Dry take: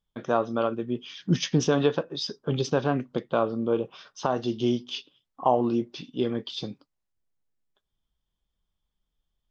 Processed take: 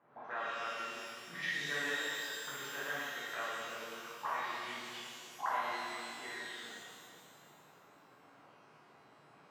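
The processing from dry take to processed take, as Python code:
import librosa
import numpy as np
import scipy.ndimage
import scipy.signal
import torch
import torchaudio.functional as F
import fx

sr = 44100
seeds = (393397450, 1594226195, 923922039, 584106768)

y = fx.auto_wah(x, sr, base_hz=670.0, top_hz=1900.0, q=18.0, full_db=-26.5, direction='up')
y = fx.dmg_noise_band(y, sr, seeds[0], low_hz=120.0, high_hz=1400.0, level_db=-78.0)
y = fx.rev_shimmer(y, sr, seeds[1], rt60_s=2.2, semitones=12, shimmer_db=-8, drr_db=-10.5)
y = y * 10.0 ** (5.0 / 20.0)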